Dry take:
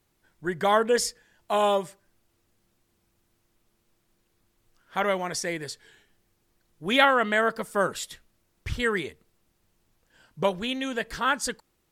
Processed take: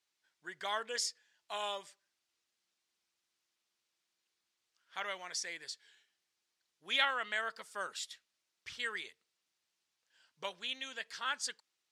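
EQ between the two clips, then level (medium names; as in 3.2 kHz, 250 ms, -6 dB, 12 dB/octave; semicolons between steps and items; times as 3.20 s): band-pass filter 5.4 kHz, Q 0.96; treble shelf 5.3 kHz -10 dB; 0.0 dB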